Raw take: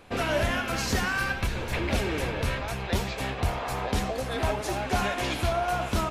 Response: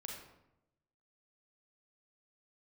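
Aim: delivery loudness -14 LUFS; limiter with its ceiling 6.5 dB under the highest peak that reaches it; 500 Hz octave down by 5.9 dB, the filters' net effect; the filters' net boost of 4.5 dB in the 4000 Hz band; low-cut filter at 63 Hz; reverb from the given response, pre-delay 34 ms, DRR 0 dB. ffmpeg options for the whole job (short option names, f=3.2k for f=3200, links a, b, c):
-filter_complex "[0:a]highpass=63,equalizer=f=500:t=o:g=-8.5,equalizer=f=4k:t=o:g=6,alimiter=limit=-20.5dB:level=0:latency=1,asplit=2[a][b];[1:a]atrim=start_sample=2205,adelay=34[c];[b][c]afir=irnorm=-1:irlink=0,volume=2.5dB[d];[a][d]amix=inputs=2:normalize=0,volume=13.5dB"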